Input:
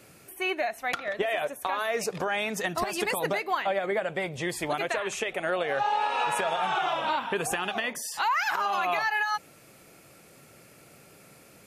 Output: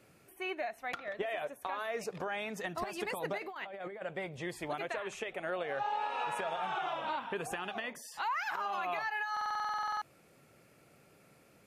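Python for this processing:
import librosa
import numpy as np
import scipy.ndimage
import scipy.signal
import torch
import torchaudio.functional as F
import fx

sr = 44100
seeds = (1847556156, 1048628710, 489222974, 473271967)

y = fx.high_shelf(x, sr, hz=11000.0, db=4.0)
y = fx.over_compress(y, sr, threshold_db=-35.0, ratio=-1.0, at=(3.38, 4.03))
y = fx.high_shelf(y, sr, hz=4700.0, db=-9.5)
y = fx.buffer_glitch(y, sr, at_s=(9.32,), block=2048, repeats=14)
y = y * 10.0 ** (-8.0 / 20.0)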